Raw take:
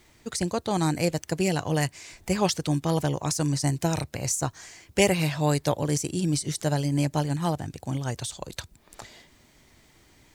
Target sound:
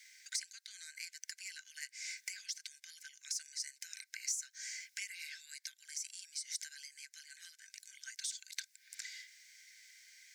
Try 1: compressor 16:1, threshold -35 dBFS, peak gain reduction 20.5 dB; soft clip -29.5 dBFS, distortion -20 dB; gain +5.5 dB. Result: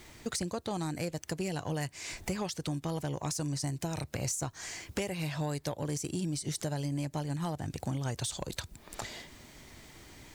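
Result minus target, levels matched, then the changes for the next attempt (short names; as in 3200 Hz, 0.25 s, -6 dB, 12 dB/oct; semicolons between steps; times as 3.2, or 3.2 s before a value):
2000 Hz band -4.5 dB
add after compressor: rippled Chebyshev high-pass 1500 Hz, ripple 9 dB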